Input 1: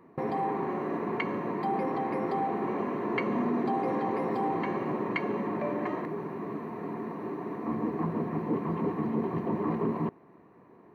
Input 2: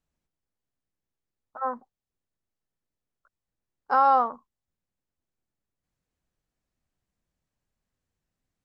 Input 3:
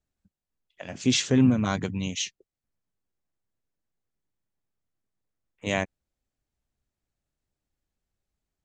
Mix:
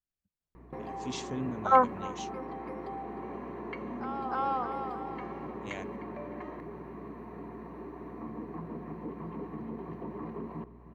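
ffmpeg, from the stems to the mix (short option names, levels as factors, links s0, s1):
-filter_complex "[0:a]acompressor=threshold=0.002:ratio=1.5,aeval=exprs='val(0)+0.00251*(sin(2*PI*60*n/s)+sin(2*PI*2*60*n/s)/2+sin(2*PI*3*60*n/s)/3+sin(2*PI*4*60*n/s)/4+sin(2*PI*5*60*n/s)/5)':c=same,adelay=550,volume=0.944,asplit=2[s0][s1];[s1]volume=0.15[s2];[1:a]acontrast=86,adelay=100,volume=1.19,asplit=2[s3][s4];[s4]volume=0.106[s5];[2:a]volume=0.158,asplit=2[s6][s7];[s7]apad=whole_len=385827[s8];[s3][s8]sidechaingate=range=0.0447:threshold=0.00126:ratio=16:detection=peak[s9];[s2][s5]amix=inputs=2:normalize=0,aecho=0:1:305|610|915|1220|1525|1830:1|0.44|0.194|0.0852|0.0375|0.0165[s10];[s0][s9][s6][s10]amix=inputs=4:normalize=0"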